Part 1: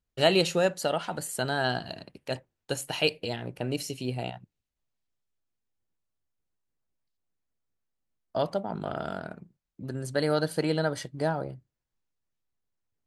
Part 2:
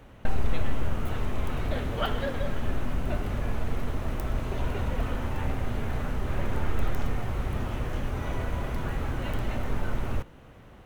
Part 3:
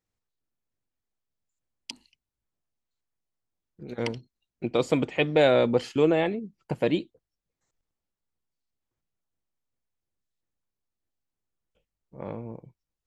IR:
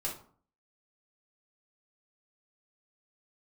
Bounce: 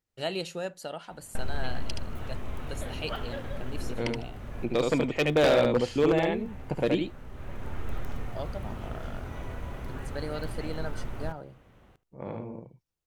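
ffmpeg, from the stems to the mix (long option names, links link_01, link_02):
-filter_complex "[0:a]volume=-10dB[link_01];[1:a]adelay=1100,volume=-7dB,asplit=2[link_02][link_03];[link_03]volume=-19.5dB[link_04];[2:a]volume=-2dB,asplit=3[link_05][link_06][link_07];[link_06]volume=-3.5dB[link_08];[link_07]apad=whole_len=527320[link_09];[link_02][link_09]sidechaincompress=threshold=-31dB:ratio=8:attack=9.8:release=1040[link_10];[link_04][link_08]amix=inputs=2:normalize=0,aecho=0:1:74:1[link_11];[link_01][link_10][link_05][link_11]amix=inputs=4:normalize=0,aeval=exprs='0.178*(abs(mod(val(0)/0.178+3,4)-2)-1)':channel_layout=same"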